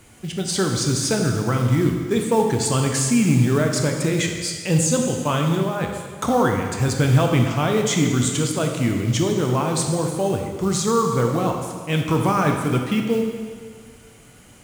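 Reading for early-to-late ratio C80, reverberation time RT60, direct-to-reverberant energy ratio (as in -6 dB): 5.5 dB, 1.8 s, 2.0 dB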